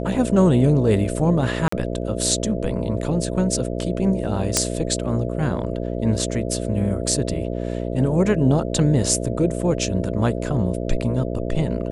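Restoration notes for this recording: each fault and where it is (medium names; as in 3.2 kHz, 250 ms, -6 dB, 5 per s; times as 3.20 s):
buzz 60 Hz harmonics 11 -26 dBFS
1.68–1.72 s: dropout 44 ms
4.57 s: pop -1 dBFS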